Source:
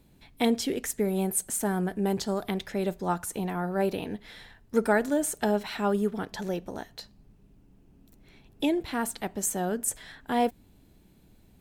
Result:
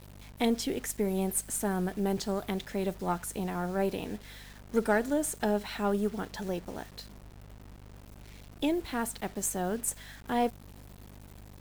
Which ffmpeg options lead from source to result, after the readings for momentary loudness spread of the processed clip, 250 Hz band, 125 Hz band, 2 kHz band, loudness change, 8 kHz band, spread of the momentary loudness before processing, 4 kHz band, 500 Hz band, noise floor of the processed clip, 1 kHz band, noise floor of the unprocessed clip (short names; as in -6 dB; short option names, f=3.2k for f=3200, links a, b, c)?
22 LU, -2.5 dB, -2.0 dB, -3.0 dB, -3.0 dB, -3.0 dB, 10 LU, -3.0 dB, -3.0 dB, -51 dBFS, -3.0 dB, -59 dBFS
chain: -af "aeval=exprs='val(0)+0.00447*(sin(2*PI*50*n/s)+sin(2*PI*2*50*n/s)/2+sin(2*PI*3*50*n/s)/3+sin(2*PI*4*50*n/s)/4+sin(2*PI*5*50*n/s)/5)':c=same,acrusher=bits=7:mix=0:aa=0.000001,aeval=exprs='0.299*(cos(1*acos(clip(val(0)/0.299,-1,1)))-cos(1*PI/2))+0.00668*(cos(8*acos(clip(val(0)/0.299,-1,1)))-cos(8*PI/2))':c=same,volume=-3dB"